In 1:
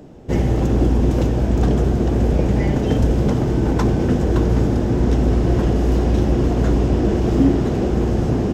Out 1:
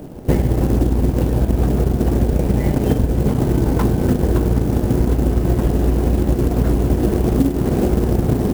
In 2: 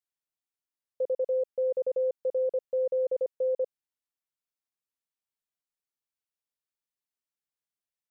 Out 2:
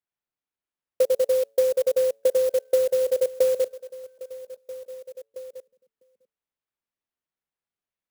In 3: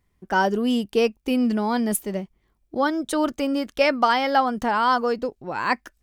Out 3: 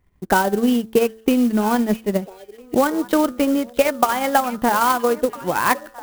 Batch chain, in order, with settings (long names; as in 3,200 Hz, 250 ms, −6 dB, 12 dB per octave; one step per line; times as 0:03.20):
hum removal 111.2 Hz, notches 17
in parallel at +0.5 dB: speech leveller 2 s
on the sum: transient designer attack +7 dB, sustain −6 dB
downward compressor 5 to 1, threshold −11 dBFS
high-frequency loss of the air 190 metres
on a send: echo through a band-pass that steps 652 ms, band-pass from 3,200 Hz, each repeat −1.4 octaves, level −12 dB
on the sum: converter with an unsteady clock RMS 0.038 ms
level −1 dB